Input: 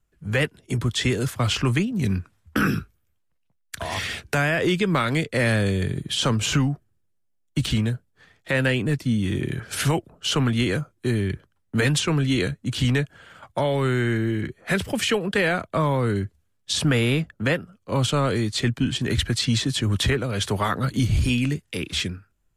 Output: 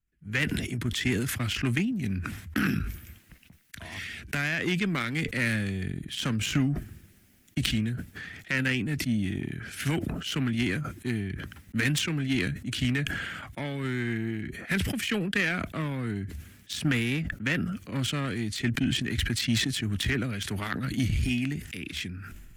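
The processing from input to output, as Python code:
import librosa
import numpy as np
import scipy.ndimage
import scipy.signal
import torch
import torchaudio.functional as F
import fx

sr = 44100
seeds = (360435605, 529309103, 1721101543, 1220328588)

y = fx.cheby_harmonics(x, sr, harmonics=(3,), levels_db=(-13,), full_scale_db=-10.0)
y = fx.graphic_eq(y, sr, hz=(125, 250, 500, 1000, 2000, 4000, 8000), db=(-3, 4, -10, -10, 5, -4, -4))
y = fx.sustainer(y, sr, db_per_s=31.0)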